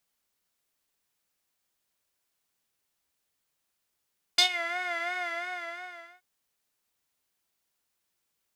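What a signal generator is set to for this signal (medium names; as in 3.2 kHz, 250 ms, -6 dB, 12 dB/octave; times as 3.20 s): synth patch with vibrato F5, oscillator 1 square, oscillator 2 saw, oscillator 2 level -0.5 dB, sub -5.5 dB, noise -13 dB, filter bandpass, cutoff 1.6 kHz, filter envelope 1.5 oct, filter decay 0.22 s, filter sustain 5%, attack 5.4 ms, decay 0.10 s, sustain -17 dB, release 1.06 s, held 0.77 s, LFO 2.9 Hz, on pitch 70 cents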